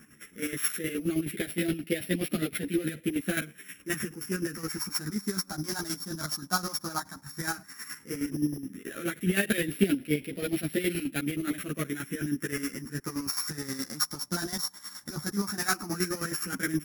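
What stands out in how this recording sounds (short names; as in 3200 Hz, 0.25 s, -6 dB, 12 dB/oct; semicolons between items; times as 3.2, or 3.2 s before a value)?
a buzz of ramps at a fixed pitch in blocks of 8 samples; phasing stages 4, 0.12 Hz, lowest notch 450–1000 Hz; chopped level 9.5 Hz, depth 65%, duty 35%; a shimmering, thickened sound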